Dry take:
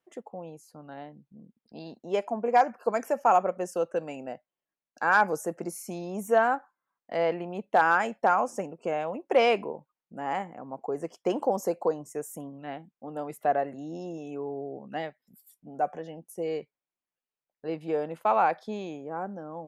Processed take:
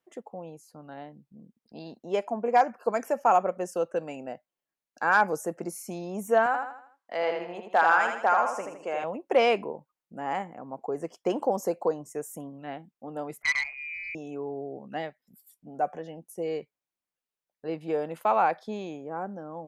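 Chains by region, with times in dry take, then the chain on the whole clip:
0:06.46–0:09.04: meter weighting curve A + repeating echo 80 ms, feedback 42%, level −5 dB
0:13.42–0:14.15: log-companded quantiser 8 bits + voice inversion scrambler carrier 2,700 Hz + saturating transformer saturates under 2,500 Hz
0:17.90–0:18.41: high-shelf EQ 11,000 Hz +5.5 dB + one half of a high-frequency compander encoder only
whole clip: no processing

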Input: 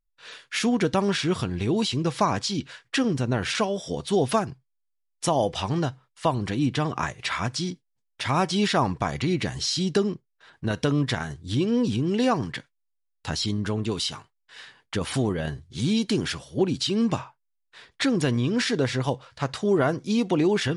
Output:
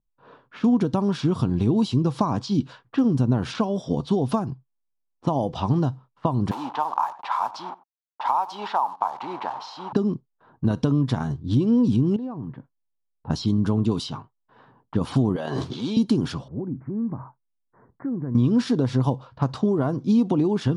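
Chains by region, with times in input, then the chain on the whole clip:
0:06.51–0:09.93: hold until the input has moved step −33.5 dBFS + high-pass with resonance 870 Hz, resonance Q 5.6 + single-tap delay 91 ms −21 dB
0:12.16–0:13.30: downward compressor 5 to 1, threshold −37 dBFS + head-to-tape spacing loss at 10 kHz 29 dB
0:15.36–0:15.97: high-pass filter 530 Hz + envelope flattener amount 100%
0:16.48–0:18.35: Butterworth low-pass 2,100 Hz 96 dB per octave + parametric band 880 Hz −4 dB 1.8 octaves + downward compressor 3 to 1, threshold −38 dBFS
whole clip: downward compressor, threshold −25 dBFS; octave-band graphic EQ 125/250/1,000/2,000/8,000 Hz +8/+9/+8/−12/−6 dB; low-pass that shuts in the quiet parts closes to 1,000 Hz, open at −19 dBFS

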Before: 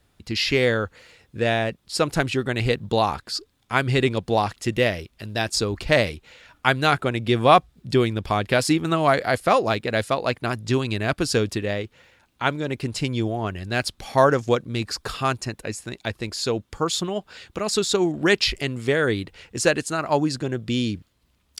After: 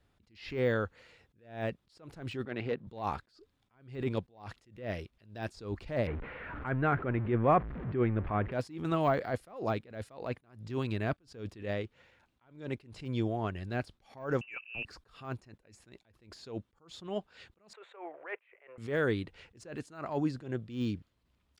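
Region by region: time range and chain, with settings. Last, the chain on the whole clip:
0:02.45–0:02.87: high-shelf EQ 2,900 Hz −8.5 dB + gain into a clipping stage and back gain 15.5 dB + band-pass filter 190–4,200 Hz
0:06.07–0:08.52: converter with a step at zero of −26.5 dBFS + low-pass filter 2,000 Hz 24 dB per octave + parametric band 810 Hz −3.5 dB 0.98 octaves
0:14.41–0:14.85: high-frequency loss of the air 170 metres + voice inversion scrambler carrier 2,800 Hz
0:17.73–0:18.78: elliptic band-pass filter 490–2,300 Hz + multiband upward and downward compressor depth 40%
whole clip: de-essing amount 85%; high-shelf EQ 5,300 Hz −11.5 dB; level that may rise only so fast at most 130 dB per second; level −7 dB

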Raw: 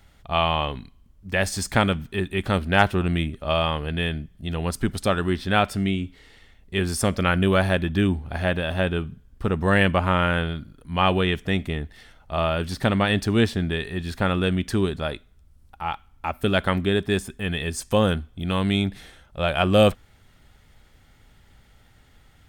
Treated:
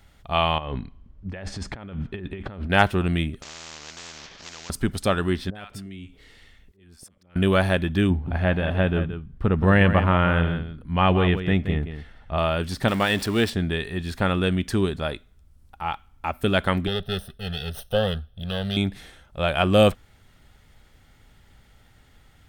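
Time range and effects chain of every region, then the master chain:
0:00.58–0:02.70: head-to-tape spacing loss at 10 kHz 27 dB + compressor whose output falls as the input rises −33 dBFS
0:03.42–0:04.70: variable-slope delta modulation 32 kbit/s + downward compressor 8 to 1, threshold −32 dBFS + every bin compressed towards the loudest bin 10 to 1
0:05.50–0:07.36: downward compressor 5 to 1, threshold −36 dBFS + volume swells 617 ms + multiband delay without the direct sound lows, highs 50 ms, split 840 Hz
0:08.10–0:12.38: bass and treble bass +4 dB, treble −13 dB + single-tap delay 174 ms −10 dB
0:12.88–0:13.50: converter with a step at zero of −30 dBFS + low-shelf EQ 220 Hz −8 dB + notch filter 6,400 Hz, Q 11
0:16.87–0:18.77: lower of the sound and its delayed copy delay 0.31 ms + phaser with its sweep stopped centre 1,500 Hz, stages 8
whole clip: no processing

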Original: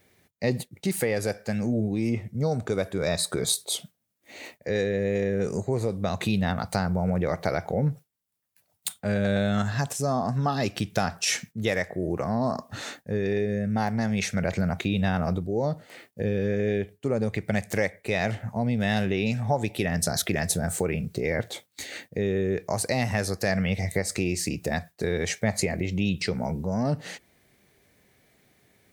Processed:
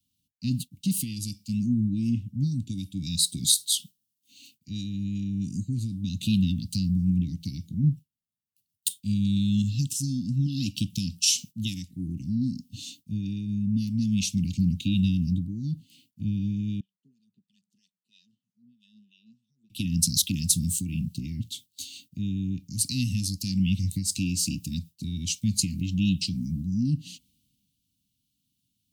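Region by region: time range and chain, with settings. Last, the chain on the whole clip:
0:16.80–0:19.70: high-pass filter 170 Hz 6 dB per octave + phaser with its sweep stopped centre 440 Hz, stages 8 + LFO wah 3.1 Hz 580–2,400 Hz, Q 2.7
whole clip: Chebyshev band-stop filter 280–2,800 Hz, order 5; multiband upward and downward expander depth 40%; level +2 dB

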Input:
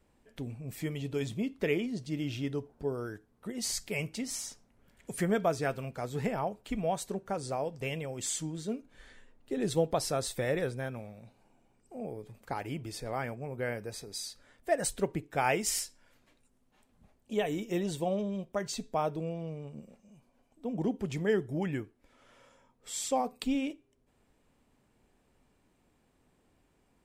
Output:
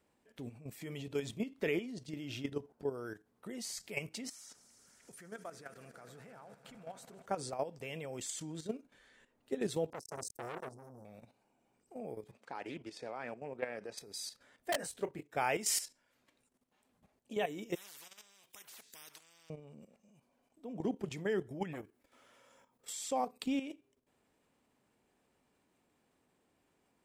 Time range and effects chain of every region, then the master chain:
0:04.29–0:07.26: parametric band 1,400 Hz +7.5 dB 0.48 octaves + downward compressor 2.5 to 1, threshold −49 dBFS + echo that builds up and dies away 80 ms, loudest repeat 5, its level −18 dB
0:09.90–0:11.05: Chebyshev band-stop filter 490–5,900 Hz, order 3 + parametric band 4,700 Hz +4 dB 1.2 octaves + saturating transformer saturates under 1,400 Hz
0:12.31–0:13.98: band-pass filter 190–6,500 Hz + highs frequency-modulated by the lows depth 0.17 ms
0:14.72–0:15.36: wrap-around overflow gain 18 dB + micro pitch shift up and down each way 43 cents
0:17.75–0:19.50: guitar amp tone stack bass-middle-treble 5-5-5 + every bin compressed towards the loudest bin 10 to 1
0:21.73–0:22.93: high-shelf EQ 11,000 Hz +11 dB + saturating transformer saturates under 630 Hz
whole clip: high-pass filter 220 Hz 6 dB per octave; output level in coarse steps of 11 dB; level +1 dB

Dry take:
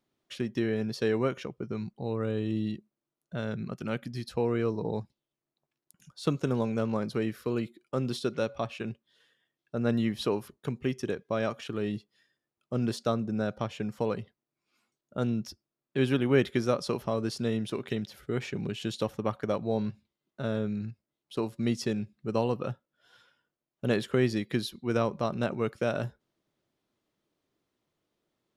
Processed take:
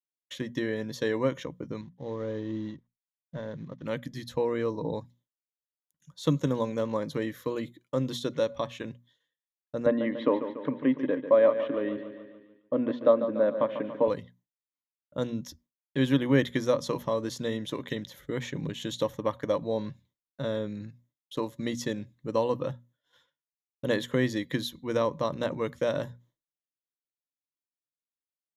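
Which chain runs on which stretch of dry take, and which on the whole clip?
0:01.81–0:03.86: variable-slope delta modulation 32 kbit/s + low-pass filter 1,400 Hz 6 dB per octave + expander for the loud parts, over −51 dBFS
0:09.86–0:14.08: loudspeaker in its box 220–2,700 Hz, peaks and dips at 270 Hz +9 dB, 570 Hz +9 dB, 1,100 Hz +4 dB + repeating echo 144 ms, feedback 56%, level −10.5 dB
whole clip: mains-hum notches 60/120/180/240 Hz; downward expander −54 dBFS; EQ curve with evenly spaced ripples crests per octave 1.1, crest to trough 10 dB

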